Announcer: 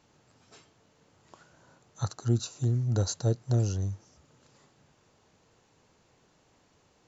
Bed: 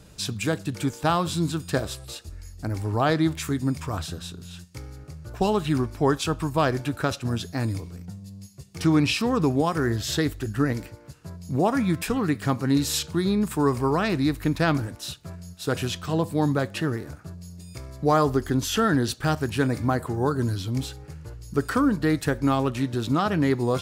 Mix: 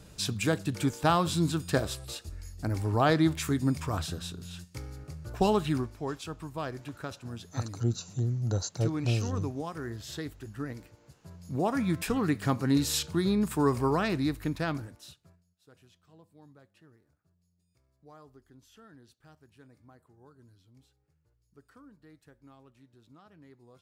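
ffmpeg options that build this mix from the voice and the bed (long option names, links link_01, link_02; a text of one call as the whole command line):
ffmpeg -i stem1.wav -i stem2.wav -filter_complex "[0:a]adelay=5550,volume=-2.5dB[link_01];[1:a]volume=8dB,afade=type=out:start_time=5.52:duration=0.49:silence=0.266073,afade=type=in:start_time=10.98:duration=1.18:silence=0.316228,afade=type=out:start_time=13.86:duration=1.58:silence=0.0334965[link_02];[link_01][link_02]amix=inputs=2:normalize=0" out.wav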